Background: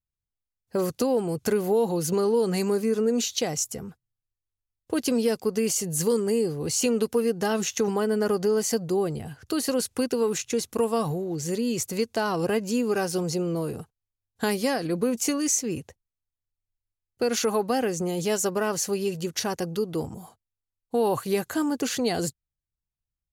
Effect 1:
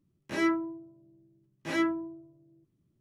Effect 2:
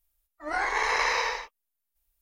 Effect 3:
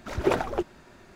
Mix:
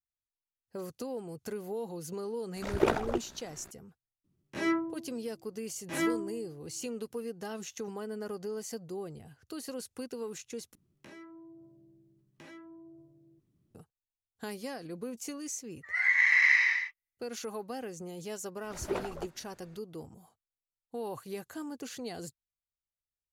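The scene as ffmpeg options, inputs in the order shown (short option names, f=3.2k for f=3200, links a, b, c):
-filter_complex "[3:a]asplit=2[a][b];[1:a]asplit=2[c][d];[0:a]volume=-14.5dB[e];[a]tremolo=f=62:d=0.667[f];[c]acontrast=87[g];[d]acompressor=threshold=-50dB:ratio=6:attack=3.2:release=140:knee=1:detection=peak[h];[2:a]highpass=f=2k:t=q:w=13[i];[b]asplit=2[j][k];[k]adelay=16,volume=-10.5dB[l];[j][l]amix=inputs=2:normalize=0[m];[e]asplit=2[n][o];[n]atrim=end=10.754[p];[h]atrim=end=3[q];[o]atrim=start=13.746[r];[f]atrim=end=1.15,asetpts=PTS-STARTPTS,volume=-0.5dB,afade=t=in:d=0.004:c=hsin,afade=t=out:st=1.146:d=0.004:c=hsin,adelay=2560[s];[g]atrim=end=3,asetpts=PTS-STARTPTS,volume=-9.5dB,afade=t=in:d=0.004:c=hsin,afade=t=out:st=2.996:d=0.004:c=hsin,adelay=4240[t];[i]atrim=end=2.21,asetpts=PTS-STARTPTS,volume=-10.5dB,afade=t=in:d=0.004:c=hsin,afade=t=out:st=2.206:d=0.004:c=hsin,adelay=15430[u];[m]atrim=end=1.15,asetpts=PTS-STARTPTS,volume=-11.5dB,afade=t=in:d=0.004:c=hsin,afade=t=out:st=1.146:d=0.004:c=hsin,adelay=18640[v];[p][q]acrossfade=d=0.004:c1=hsin:c2=hsin[w];[w][r]acrossfade=d=0.004:c1=hsin:c2=hsin[x];[x][s][t][u][v]amix=inputs=5:normalize=0"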